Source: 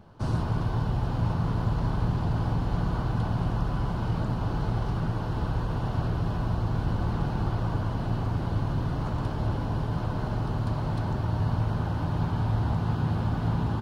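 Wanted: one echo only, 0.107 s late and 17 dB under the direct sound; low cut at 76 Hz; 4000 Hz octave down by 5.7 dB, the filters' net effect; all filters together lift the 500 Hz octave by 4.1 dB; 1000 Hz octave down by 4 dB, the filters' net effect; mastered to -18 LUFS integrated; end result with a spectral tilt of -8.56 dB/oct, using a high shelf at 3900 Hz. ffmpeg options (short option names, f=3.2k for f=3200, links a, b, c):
-af "highpass=76,equalizer=f=500:t=o:g=7.5,equalizer=f=1k:t=o:g=-7.5,highshelf=f=3.9k:g=-4.5,equalizer=f=4k:t=o:g=-4.5,aecho=1:1:107:0.141,volume=11dB"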